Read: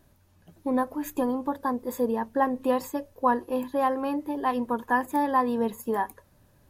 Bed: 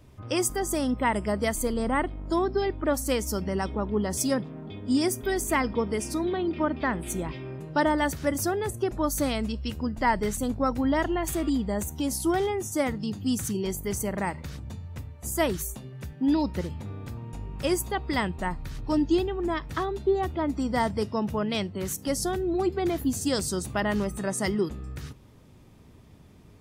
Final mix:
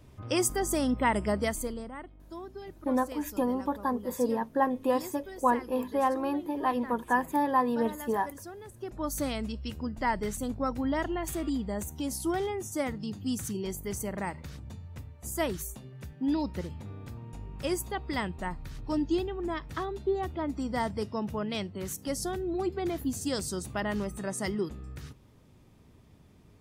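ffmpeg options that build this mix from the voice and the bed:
ffmpeg -i stem1.wav -i stem2.wav -filter_complex "[0:a]adelay=2200,volume=-2dB[link_01];[1:a]volume=11dB,afade=type=out:start_time=1.32:duration=0.59:silence=0.158489,afade=type=in:start_time=8.74:duration=0.4:silence=0.251189[link_02];[link_01][link_02]amix=inputs=2:normalize=0" out.wav

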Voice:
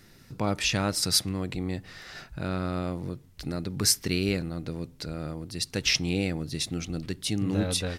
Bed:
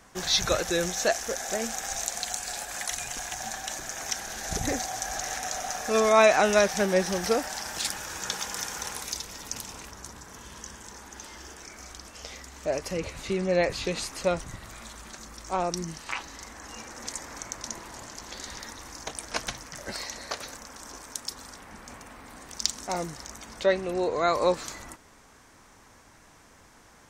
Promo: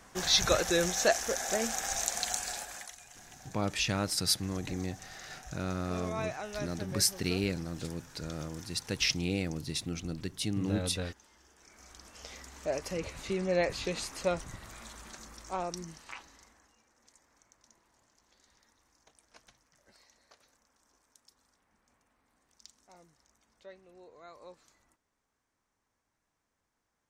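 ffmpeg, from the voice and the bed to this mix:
ffmpeg -i stem1.wav -i stem2.wav -filter_complex "[0:a]adelay=3150,volume=-4.5dB[link_01];[1:a]volume=13dB,afade=type=out:start_time=2.38:duration=0.55:silence=0.133352,afade=type=in:start_time=11.53:duration=0.89:silence=0.199526,afade=type=out:start_time=15.12:duration=1.63:silence=0.0707946[link_02];[link_01][link_02]amix=inputs=2:normalize=0" out.wav

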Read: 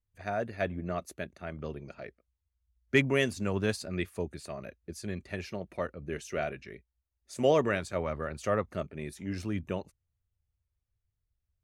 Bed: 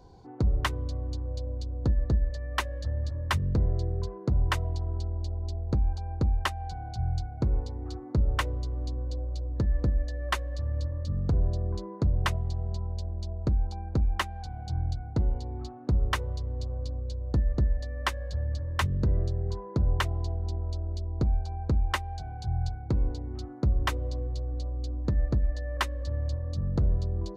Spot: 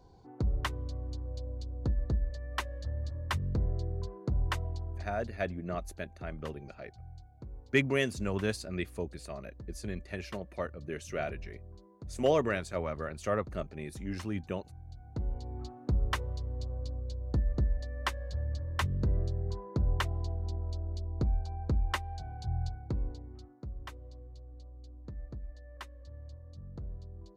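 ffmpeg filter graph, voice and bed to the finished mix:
ffmpeg -i stem1.wav -i stem2.wav -filter_complex "[0:a]adelay=4800,volume=-2dB[link_01];[1:a]volume=10dB,afade=type=out:start_time=4.64:duration=0.9:silence=0.199526,afade=type=in:start_time=14.86:duration=0.73:silence=0.16788,afade=type=out:start_time=22.53:duration=1.07:silence=0.223872[link_02];[link_01][link_02]amix=inputs=2:normalize=0" out.wav

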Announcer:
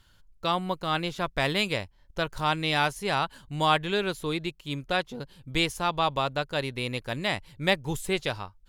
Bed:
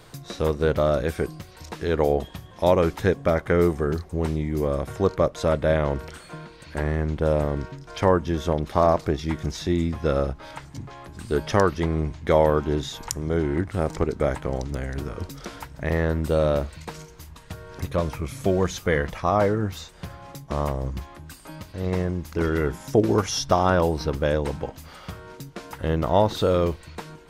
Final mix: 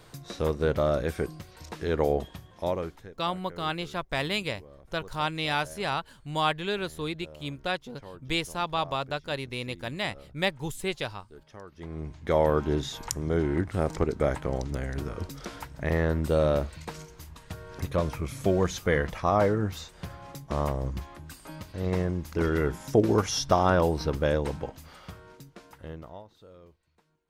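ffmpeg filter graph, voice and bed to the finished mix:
ffmpeg -i stem1.wav -i stem2.wav -filter_complex "[0:a]adelay=2750,volume=-3dB[link_01];[1:a]volume=20dB,afade=type=out:start_time=2.21:duration=0.88:silence=0.0749894,afade=type=in:start_time=11.71:duration=0.92:silence=0.0630957,afade=type=out:start_time=24.28:duration=1.96:silence=0.0375837[link_02];[link_01][link_02]amix=inputs=2:normalize=0" out.wav

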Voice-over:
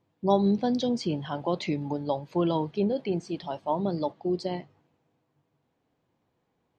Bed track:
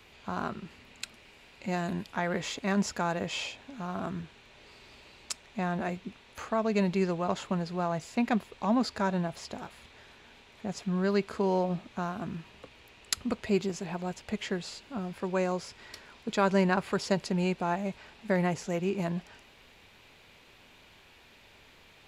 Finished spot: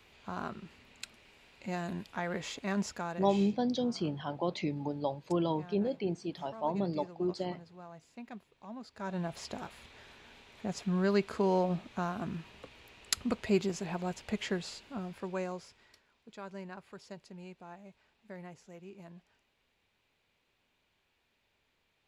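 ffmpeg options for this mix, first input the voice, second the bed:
ffmpeg -i stem1.wav -i stem2.wav -filter_complex "[0:a]adelay=2950,volume=-5dB[link_01];[1:a]volume=13dB,afade=type=out:start_time=2.79:duration=0.78:silence=0.199526,afade=type=in:start_time=8.93:duration=0.48:silence=0.125893,afade=type=out:start_time=14.5:duration=1.53:silence=0.11885[link_02];[link_01][link_02]amix=inputs=2:normalize=0" out.wav

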